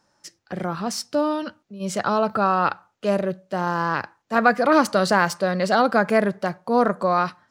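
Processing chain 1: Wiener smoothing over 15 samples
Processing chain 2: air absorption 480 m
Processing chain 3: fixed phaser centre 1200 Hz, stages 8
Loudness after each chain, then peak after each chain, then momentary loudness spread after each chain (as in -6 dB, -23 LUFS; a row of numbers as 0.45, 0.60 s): -22.5, -24.0, -25.0 LUFS; -3.0, -5.5, -7.5 dBFS; 11, 11, 12 LU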